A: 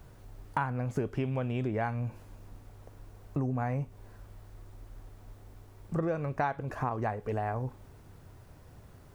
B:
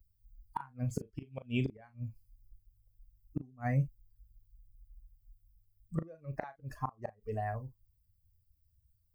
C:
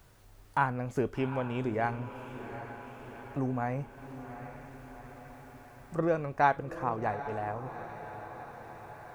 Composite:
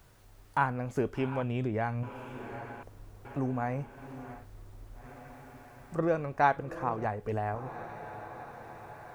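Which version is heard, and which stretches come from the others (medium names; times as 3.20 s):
C
1.43–2.03 s: from A
2.83–3.25 s: from A
4.39–5.00 s: from A, crossfade 0.16 s
7.05–7.55 s: from A
not used: B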